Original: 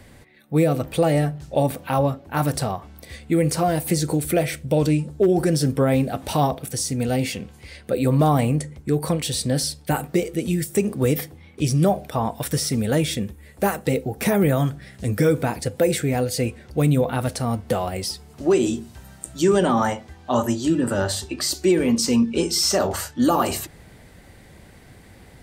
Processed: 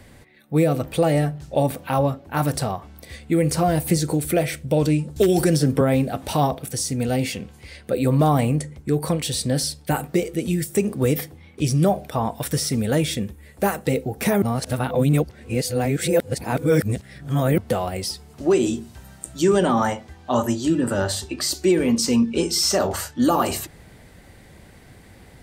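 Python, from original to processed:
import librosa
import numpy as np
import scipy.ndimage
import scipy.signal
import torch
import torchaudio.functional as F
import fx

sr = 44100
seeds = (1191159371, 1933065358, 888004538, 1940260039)

y = fx.low_shelf(x, sr, hz=110.0, db=9.5, at=(3.5, 3.97))
y = fx.band_squash(y, sr, depth_pct=100, at=(5.16, 5.81))
y = fx.edit(y, sr, fx.reverse_span(start_s=14.42, length_s=3.16), tone=tone)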